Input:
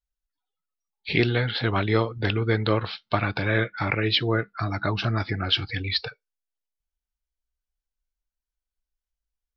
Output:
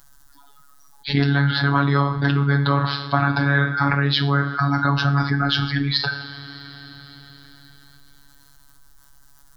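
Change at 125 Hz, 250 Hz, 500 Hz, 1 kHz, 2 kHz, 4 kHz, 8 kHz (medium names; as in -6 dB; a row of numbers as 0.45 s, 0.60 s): +7.0 dB, +6.5 dB, -2.0 dB, +8.0 dB, +5.5 dB, +2.5 dB, no reading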